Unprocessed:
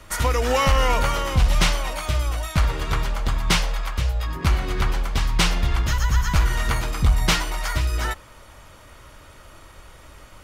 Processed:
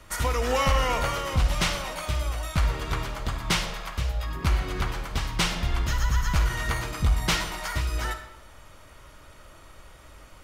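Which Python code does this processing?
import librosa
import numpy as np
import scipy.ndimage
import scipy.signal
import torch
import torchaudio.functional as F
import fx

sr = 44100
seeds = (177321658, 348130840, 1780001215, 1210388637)

y = fx.rev_freeverb(x, sr, rt60_s=0.84, hf_ratio=0.8, predelay_ms=15, drr_db=8.0)
y = y * librosa.db_to_amplitude(-4.5)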